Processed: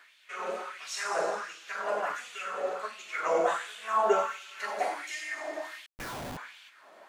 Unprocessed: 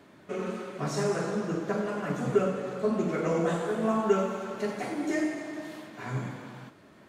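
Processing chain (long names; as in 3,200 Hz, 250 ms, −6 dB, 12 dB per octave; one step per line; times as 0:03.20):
auto-filter high-pass sine 1.4 Hz 610–3,000 Hz
0:05.86–0:06.37: comparator with hysteresis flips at −39 dBFS
level +1 dB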